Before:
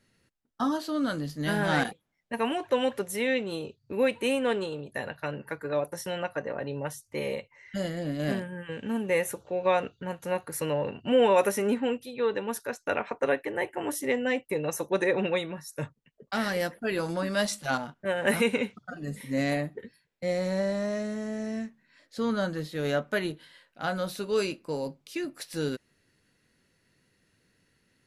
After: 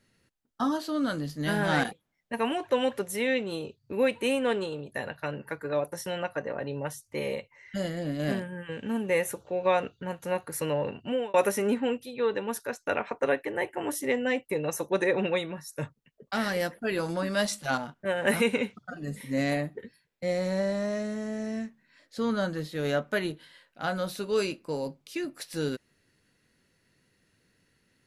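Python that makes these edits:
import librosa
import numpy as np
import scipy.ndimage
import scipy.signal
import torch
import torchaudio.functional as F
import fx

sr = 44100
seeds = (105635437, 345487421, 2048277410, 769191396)

y = fx.edit(x, sr, fx.fade_out_span(start_s=10.94, length_s=0.4), tone=tone)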